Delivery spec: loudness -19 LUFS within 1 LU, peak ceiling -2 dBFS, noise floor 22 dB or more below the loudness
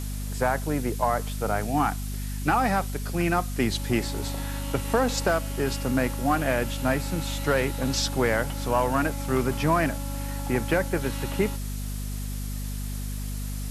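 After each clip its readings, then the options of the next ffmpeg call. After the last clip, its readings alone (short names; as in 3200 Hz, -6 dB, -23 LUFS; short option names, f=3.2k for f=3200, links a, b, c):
hum 50 Hz; harmonics up to 250 Hz; hum level -29 dBFS; noise floor -32 dBFS; noise floor target -49 dBFS; loudness -27.0 LUFS; peak -10.0 dBFS; loudness target -19.0 LUFS
-> -af "bandreject=f=50:t=h:w=6,bandreject=f=100:t=h:w=6,bandreject=f=150:t=h:w=6,bandreject=f=200:t=h:w=6,bandreject=f=250:t=h:w=6"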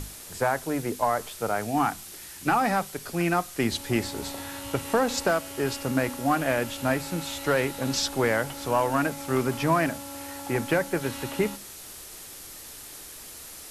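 hum none; noise floor -43 dBFS; noise floor target -49 dBFS
-> -af "afftdn=nr=6:nf=-43"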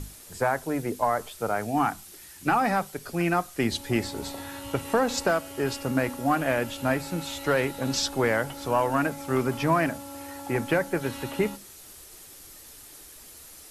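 noise floor -48 dBFS; noise floor target -49 dBFS
-> -af "afftdn=nr=6:nf=-48"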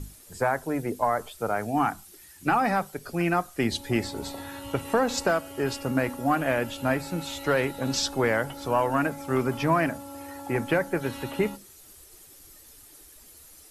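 noise floor -51 dBFS; loudness -27.0 LUFS; peak -11.0 dBFS; loudness target -19.0 LUFS
-> -af "volume=8dB"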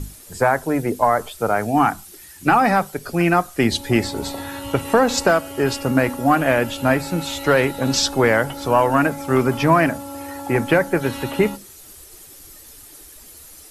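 loudness -19.0 LUFS; peak -3.0 dBFS; noise floor -43 dBFS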